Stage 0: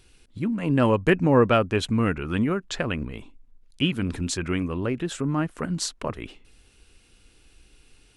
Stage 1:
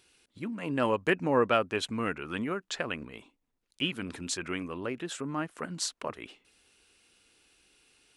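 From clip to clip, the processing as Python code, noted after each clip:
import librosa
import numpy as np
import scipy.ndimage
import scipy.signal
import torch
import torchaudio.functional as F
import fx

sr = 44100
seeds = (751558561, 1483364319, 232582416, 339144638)

y = fx.highpass(x, sr, hz=460.0, slope=6)
y = F.gain(torch.from_numpy(y), -3.5).numpy()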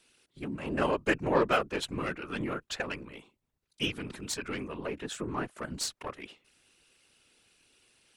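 y = fx.cheby_harmonics(x, sr, harmonics=(8,), levels_db=(-25,), full_scale_db=-10.5)
y = fx.whisperise(y, sr, seeds[0])
y = F.gain(torch.from_numpy(y), -1.0).numpy()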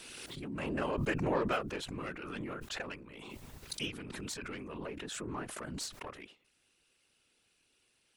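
y = fx.pre_swell(x, sr, db_per_s=23.0)
y = F.gain(torch.from_numpy(y), -7.5).numpy()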